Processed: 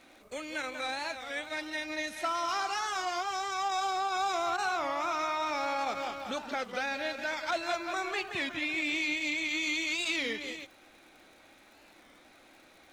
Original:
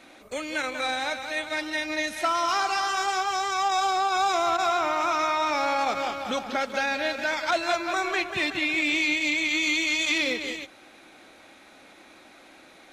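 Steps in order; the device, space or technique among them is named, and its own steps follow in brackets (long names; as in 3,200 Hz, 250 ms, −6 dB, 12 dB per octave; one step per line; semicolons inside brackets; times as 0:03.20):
warped LP (wow of a warped record 33 1/3 rpm, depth 160 cents; surface crackle 83 per second −42 dBFS; pink noise bed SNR 39 dB)
level −7 dB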